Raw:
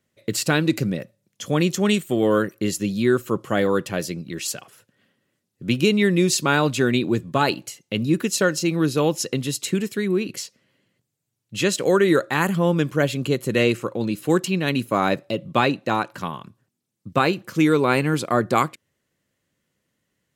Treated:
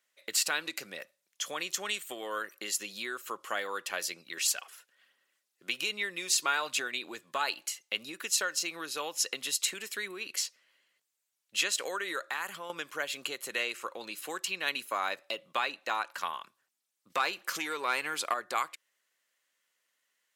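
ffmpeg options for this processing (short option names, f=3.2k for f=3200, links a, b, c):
-filter_complex "[0:a]asettb=1/sr,asplit=3[a][b][c];[a]atrim=end=4.374[d];[b]atrim=start=4.37:end=6.88,asetpts=PTS-STARTPTS,afade=t=in:d=0.004:c=qsin,afade=t=out:st=2.506:d=0.004:c=qsin,aphaser=in_gain=1:out_gain=1:delay=2.9:decay=0.27:speed=1.2:type=sinusoidal[e];[c]atrim=start=6.876[f];[d][e]acrossfade=d=0.004:c1=hsin:c2=qsin[g];[g][f]acrossfade=d=0.004:c1=qsin:c2=hsin,asettb=1/sr,asplit=3[h][i][j];[h]atrim=end=12.234[k];[i]atrim=start=12.23:end=12.7,asetpts=PTS-STARTPTS,afade=t=in:d=0.004:c=qsin,afade=t=out:st=0.466:d=0.004:c=qsin,acompressor=threshold=-25dB:ratio=12:attack=3.2:release=140:knee=1:detection=peak[l];[j]atrim=start=12.696[m];[k][l]acrossfade=d=0.004:c1=hsin:c2=qsin[n];[n][m]acrossfade=d=0.004:c1=qsin:c2=hsin,asettb=1/sr,asplit=3[o][p][q];[o]atrim=end=17.104[r];[p]atrim=start=17.1:end=18.34,asetpts=PTS-STARTPTS,afade=t=in:d=0.004:c=qsin,afade=t=out:st=1.236:d=0.004:c=qsin,acontrast=79[s];[q]atrim=start=18.336[t];[r][s]acrossfade=d=0.004:c1=hsin:c2=qsin[u];[u][t]acrossfade=d=0.004:c1=qsin:c2=hsin,acompressor=threshold=-22dB:ratio=6,highpass=1k"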